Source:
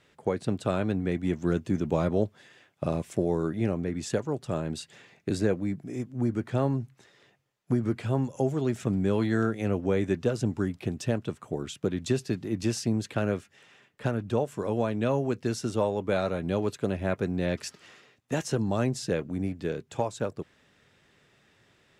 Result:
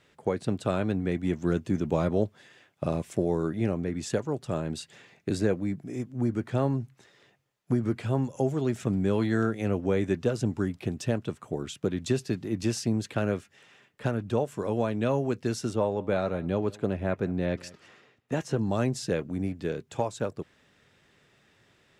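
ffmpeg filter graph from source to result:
ffmpeg -i in.wav -filter_complex "[0:a]asettb=1/sr,asplit=3[link_01][link_02][link_03];[link_01]atrim=end=15.734[link_04];[link_02]atrim=start=15.73:end=18.63,asetpts=PTS-STARTPTS,afade=type=in:duration=0.004:curve=qsin,afade=type=out:start_time=2.896:duration=0.004:curve=qsin,highshelf=frequency=3300:gain=-9,aecho=1:1:183:0.075,atrim=end_sample=127890[link_05];[link_03]atrim=start=18.626[link_06];[link_04][link_05]acrossfade=duration=0.004:curve1=hsin:curve2=qsin[link_07];[link_07][link_06]acrossfade=duration=0.004:curve1=qsin:curve2=hsin" out.wav

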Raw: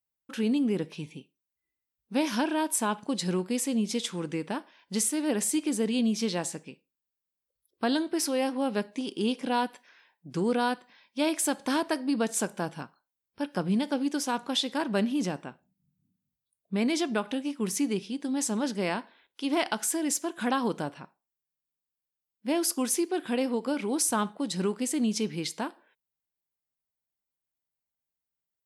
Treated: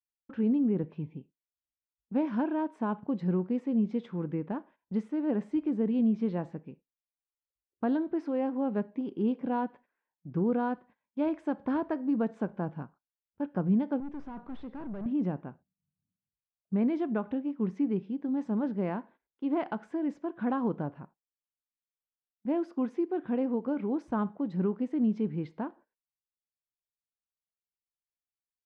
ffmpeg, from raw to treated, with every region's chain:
ffmpeg -i in.wav -filter_complex "[0:a]asettb=1/sr,asplit=3[link_01][link_02][link_03];[link_01]atrim=end=14.004[link_04];[link_02]atrim=start=14:end=15.06,asetpts=PTS-STARTPTS,afade=type=in:duration=0.004:curve=qsin,afade=type=out:start_time=1.056:duration=0.004:curve=qsin,highpass=130,aeval=exprs='(tanh(63.1*val(0)+0.2)-tanh(0.2))/63.1':channel_layout=same[link_05];[link_03]atrim=start=15.056[link_06];[link_04][link_05]acrossfade=duration=0.004:curve1=hsin:curve2=qsin[link_07];[link_07][link_06]acrossfade=duration=0.004:curve1=qsin:curve2=hsin,lowpass=1400,aemphasis=mode=reproduction:type=bsi,agate=range=-16dB:threshold=-49dB:ratio=16:detection=peak,volume=-4.5dB" out.wav

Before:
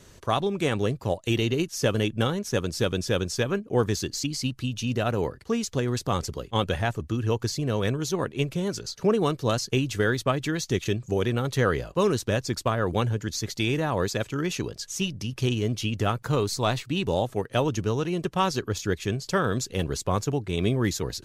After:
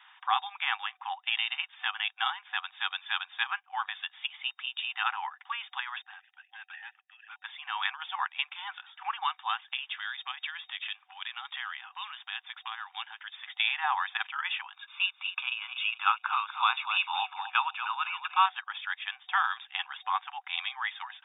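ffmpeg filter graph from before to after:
ffmpeg -i in.wav -filter_complex "[0:a]asettb=1/sr,asplit=3[link_01][link_02][link_03];[link_01]atrim=end=6.024[link_04];[link_02]atrim=start=6.02:end=7.44,asetpts=PTS-STARTPTS,afade=type=in:duration=0.004:curve=qsin,afade=type=out:start_time=1.416:duration=0.004:curve=qsin,asplit=3[link_05][link_06][link_07];[link_05]bandpass=frequency=530:width_type=q:width=8,volume=0dB[link_08];[link_06]bandpass=frequency=1840:width_type=q:width=8,volume=-6dB[link_09];[link_07]bandpass=frequency=2480:width_type=q:width=8,volume=-9dB[link_10];[link_08][link_09][link_10]amix=inputs=3:normalize=0,asoftclip=type=hard:threshold=-38dB[link_11];[link_03]atrim=start=7.436[link_12];[link_04][link_11]acrossfade=duration=0.004:curve1=hsin:curve2=qsin[link_13];[link_13][link_12]acrossfade=duration=0.004:curve1=qsin:curve2=hsin,asettb=1/sr,asplit=3[link_14][link_15][link_16];[link_14]atrim=end=9.734[link_17];[link_15]atrim=start=9.73:end=13.55,asetpts=PTS-STARTPTS,afade=type=in:duration=0.004:curve=qsin,afade=type=out:start_time=3.816:duration=0.004:curve=qsin,lowshelf=frequency=390:gain=-11.5,acrossover=split=130|3000[link_18][link_19][link_20];[link_19]acompressor=threshold=-39dB:ratio=4:attack=3.2:release=140:knee=2.83:detection=peak[link_21];[link_18][link_21][link_20]amix=inputs=3:normalize=0,acrusher=bits=6:mode=log:mix=0:aa=0.000001[link_22];[link_16]atrim=start=13.546[link_23];[link_17][link_22]acrossfade=duration=0.004:curve1=hsin:curve2=qsin[link_24];[link_24][link_23]acrossfade=duration=0.004:curve1=qsin:curve2=hsin,asettb=1/sr,asplit=3[link_25][link_26][link_27];[link_25]atrim=end=14.734[link_28];[link_26]atrim=start=14.73:end=18.46,asetpts=PTS-STARTPTS,afade=type=in:duration=0.004:curve=qsin,afade=type=out:start_time=3.726:duration=0.004:curve=qsin,aecho=1:1:0.8:0.94,atrim=end_sample=164493,aecho=1:1:242|484|726:0.282|0.0705|0.0176,atrim=end_sample=164493[link_29];[link_27]atrim=start=18.456[link_30];[link_28][link_29]acrossfade=duration=0.004:curve1=hsin:curve2=qsin[link_31];[link_31][link_30]acrossfade=duration=0.004:curve1=qsin:curve2=hsin,alimiter=limit=-14.5dB:level=0:latency=1:release=408,afftfilt=real='re*between(b*sr/4096,750,3700)':imag='im*between(b*sr/4096,750,3700)':win_size=4096:overlap=0.75,volume=4dB" out.wav

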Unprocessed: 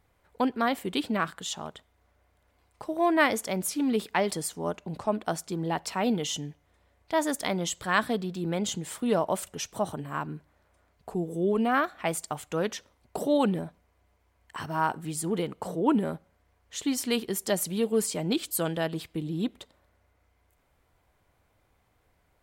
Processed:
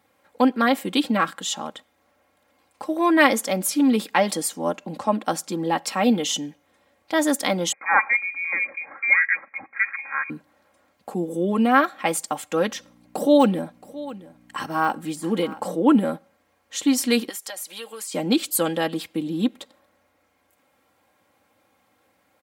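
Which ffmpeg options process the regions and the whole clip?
ffmpeg -i in.wav -filter_complex "[0:a]asettb=1/sr,asplit=3[link_01][link_02][link_03];[link_01]atrim=end=7.724[link_04];[link_02]atrim=start=7.72:end=10.3,asetpts=PTS-STARTPTS,afade=type=in:duration=0.004:curve=qsin,afade=type=out:start_time=2.576:duration=0.004:curve=qsin,highpass=260,lowpass=frequency=2200:width_type=q:width=0.5098,lowpass=frequency=2200:width_type=q:width=0.6013,lowpass=frequency=2200:width_type=q:width=0.9,lowpass=frequency=2200:width_type=q:width=2.563,afreqshift=-2600[link_05];[link_03]atrim=start=10.296[link_06];[link_04][link_05]acrossfade=duration=0.004:curve1=hsin:curve2=qsin[link_07];[link_07][link_06]acrossfade=duration=0.004:curve1=qsin:curve2=hsin,asettb=1/sr,asplit=3[link_08][link_09][link_10];[link_08]atrim=end=12.694[link_11];[link_09]atrim=start=12.69:end=15.66,asetpts=PTS-STARTPTS,afade=type=in:duration=0.004:curve=qsin,afade=type=out:start_time=2.966:duration=0.004:curve=qsin,deesser=0.9,aecho=1:1:672:0.126,atrim=end_sample=130977,aeval=exprs='val(0)+0.00224*(sin(2*PI*60*n/s)+sin(2*PI*2*60*n/s)/2+sin(2*PI*3*60*n/s)/3+sin(2*PI*4*60*n/s)/4+sin(2*PI*5*60*n/s)/5)':channel_layout=same[link_12];[link_10]atrim=start=15.656[link_13];[link_11][link_12]acrossfade=duration=0.004:curve1=hsin:curve2=qsin[link_14];[link_14][link_13]acrossfade=duration=0.004:curve1=qsin:curve2=hsin,asettb=1/sr,asplit=3[link_15][link_16][link_17];[link_15]atrim=end=17.294[link_18];[link_16]atrim=start=17.29:end=18.14,asetpts=PTS-STARTPTS,afade=type=in:duration=0.004:curve=qsin,afade=type=out:start_time=0.846:duration=0.004:curve=qsin,highpass=900,acompressor=threshold=-37dB:ratio=6:attack=3.2:release=140:knee=1:detection=peak[link_19];[link_17]atrim=start=18.136[link_20];[link_18][link_19]acrossfade=duration=0.004:curve1=hsin:curve2=qsin[link_21];[link_21][link_20]acrossfade=duration=0.004:curve1=qsin:curve2=hsin,highpass=frequency=110:width=0.5412,highpass=frequency=110:width=1.3066,lowshelf=frequency=140:gain=-4.5,aecho=1:1:3.7:0.67,volume=5.5dB" out.wav

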